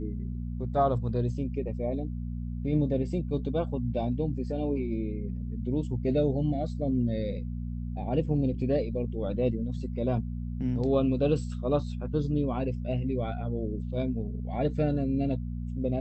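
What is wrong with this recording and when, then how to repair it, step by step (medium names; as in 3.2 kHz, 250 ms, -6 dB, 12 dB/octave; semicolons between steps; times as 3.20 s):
hum 60 Hz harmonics 4 -34 dBFS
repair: de-hum 60 Hz, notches 4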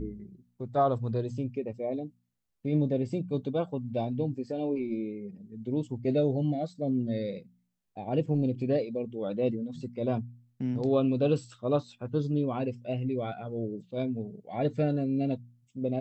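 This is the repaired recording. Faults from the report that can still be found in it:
nothing left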